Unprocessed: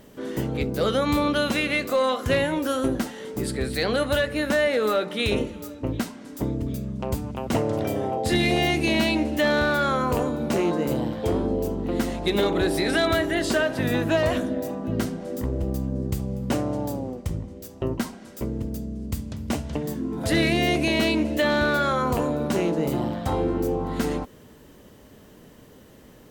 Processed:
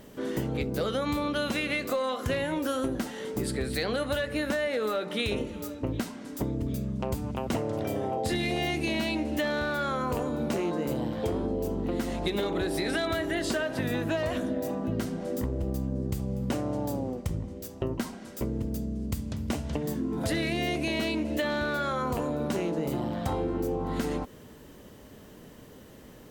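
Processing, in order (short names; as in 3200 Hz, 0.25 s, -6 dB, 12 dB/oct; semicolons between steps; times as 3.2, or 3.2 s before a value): compressor, threshold -26 dBFS, peak gain reduction 8.5 dB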